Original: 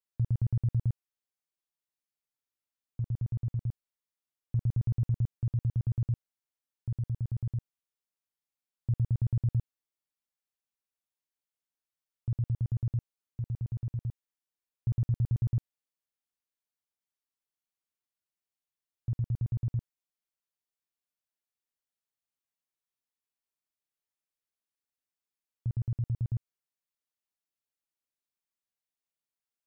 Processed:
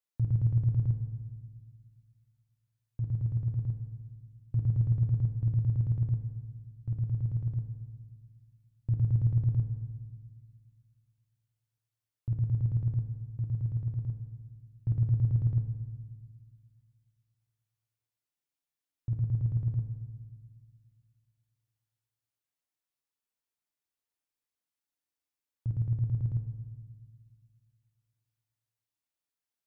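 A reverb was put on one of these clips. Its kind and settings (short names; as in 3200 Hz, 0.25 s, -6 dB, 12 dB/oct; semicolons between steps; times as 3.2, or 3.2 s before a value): FDN reverb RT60 1.5 s, low-frequency decay 1.5×, high-frequency decay 0.6×, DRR 5.5 dB; gain -1 dB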